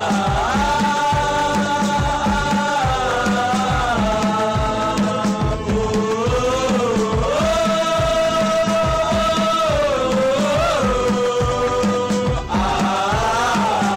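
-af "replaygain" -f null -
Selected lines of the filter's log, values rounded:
track_gain = +1.8 dB
track_peak = 0.141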